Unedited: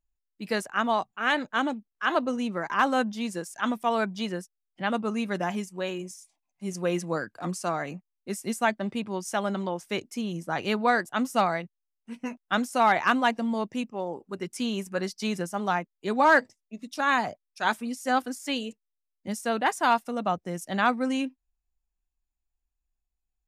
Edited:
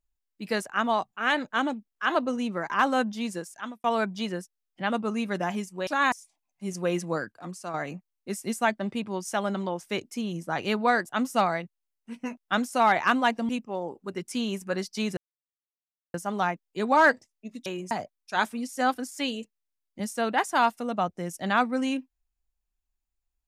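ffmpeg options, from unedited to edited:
-filter_complex "[0:a]asplit=10[a][b][c][d][e][f][g][h][i][j];[a]atrim=end=3.84,asetpts=PTS-STARTPTS,afade=t=out:st=3.33:d=0.51[k];[b]atrim=start=3.84:end=5.872,asetpts=PTS-STARTPTS,afade=t=in:d=0.004:c=hsin[l];[c]atrim=start=16.938:end=17.192[m];[d]atrim=start=6.118:end=7.322[n];[e]atrim=start=7.318:end=7.742,asetpts=PTS-STARTPTS,volume=-7dB[o];[f]atrim=start=7.738:end=13.492[p];[g]atrim=start=13.738:end=15.42,asetpts=PTS-STARTPTS,afade=t=out:st=1.678:d=0.004:c=hsin,apad=pad_dur=0.97[q];[h]atrim=start=15.42:end=16.942,asetpts=PTS-STARTPTS,afade=t=in:d=0.004:c=hsin[r];[i]atrim=start=5.868:end=6.122[s];[j]atrim=start=17.188[t];[k][l]concat=n=2:v=0:a=1[u];[u][m]acrossfade=d=0.004:c1=hsin:c2=hsin[v];[v][n]acrossfade=d=0.004:c1=hsin:c2=hsin[w];[w][o]acrossfade=d=0.004:c1=hsin:c2=hsin[x];[x][p]acrossfade=d=0.004:c1=hsin:c2=hsin[y];[q][r]concat=n=2:v=0:a=1[z];[y][z]acrossfade=d=0.004:c1=hsin:c2=hsin[aa];[aa][s]acrossfade=d=0.004:c1=hsin:c2=hsin[ab];[ab][t]acrossfade=d=0.004:c1=hsin:c2=hsin"

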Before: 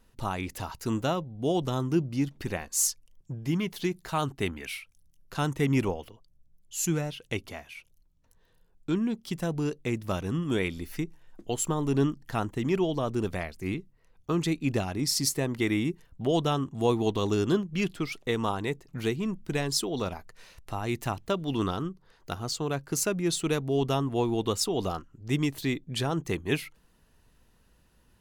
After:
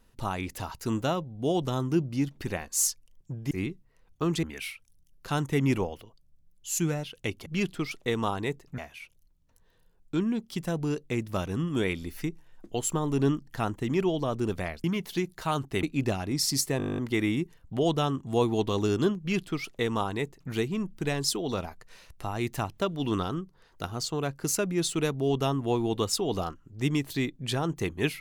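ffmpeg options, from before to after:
-filter_complex "[0:a]asplit=17[a][b][c][d][e][f][g][h][i][j][k][l][m][n][o][p][q];[a]atrim=end=3.512[r];[b]atrim=start=13.588:end=14.512[s];[c]atrim=start=4.498:end=7.532[t];[d]atrim=start=17.668:end=18.992[u];[e]atrim=start=7.528:end=13.592[v];[f]atrim=start=3.508:end=4.502[w];[g]atrim=start=14.508:end=15.482[x];[h]atrim=start=15.458:end=15.482[y];[i]atrim=start=15.458:end=15.482[z];[j]atrim=start=15.458:end=15.482[aa];[k]atrim=start=15.458:end=15.482[ab];[l]atrim=start=15.458:end=15.482[ac];[m]atrim=start=15.458:end=15.482[ad];[n]atrim=start=15.458:end=15.482[ae];[o]atrim=start=15.458:end=15.482[af];[p]atrim=start=15.458:end=15.482[ag];[q]atrim=start=15.458[ah];[r][s]acrossfade=d=0.004:c1=hsin:c2=hsin[ai];[ai][t]acrossfade=d=0.004:c1=hsin:c2=hsin[aj];[aj][u]acrossfade=d=0.004:c1=hsin:c2=hsin[ak];[ak][v]acrossfade=d=0.004:c1=hsin:c2=hsin[al];[al][w]acrossfade=d=0.004:c1=hsin:c2=hsin[am];[am][x]acrossfade=d=0.004:c1=hsin:c2=hsin[an];[an][y]acrossfade=d=0.004:c1=hsin:c2=hsin[ao];[ao][z]acrossfade=d=0.004:c1=hsin:c2=hsin[ap];[ap][aa]acrossfade=d=0.004:c1=hsin:c2=hsin[aq];[aq][ab]acrossfade=d=0.004:c1=hsin:c2=hsin[ar];[ar][ac]acrossfade=d=0.004:c1=hsin:c2=hsin[as];[as][ad]acrossfade=d=0.004:c1=hsin:c2=hsin[at];[at][ae]acrossfade=d=0.004:c1=hsin:c2=hsin[au];[au][af]acrossfade=d=0.004:c1=hsin:c2=hsin[av];[av][ag]acrossfade=d=0.004:c1=hsin:c2=hsin[aw];[aw][ah]acrossfade=d=0.004:c1=hsin:c2=hsin"

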